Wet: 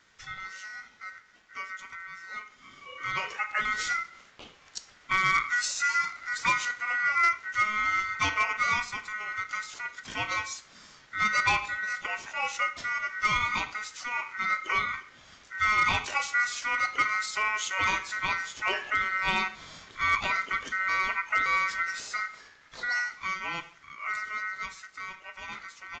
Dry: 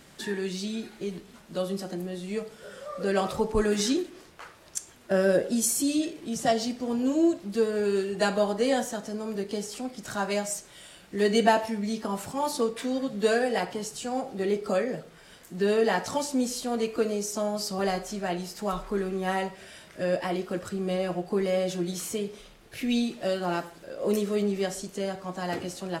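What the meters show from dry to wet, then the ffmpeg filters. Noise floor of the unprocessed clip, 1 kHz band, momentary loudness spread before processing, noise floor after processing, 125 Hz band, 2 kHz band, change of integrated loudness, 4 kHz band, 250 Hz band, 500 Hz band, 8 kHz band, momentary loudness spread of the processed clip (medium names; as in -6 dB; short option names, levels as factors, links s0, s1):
-53 dBFS, +3.5 dB, 12 LU, -57 dBFS, -10.0 dB, +11.0 dB, +0.5 dB, +0.5 dB, -21.0 dB, -20.5 dB, -5.0 dB, 16 LU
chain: -af "dynaudnorm=f=270:g=31:m=4.47,aeval=exprs='val(0)*sin(2*PI*1700*n/s)':c=same,aresample=16000,asoftclip=type=hard:threshold=0.299,aresample=44100,volume=0.473"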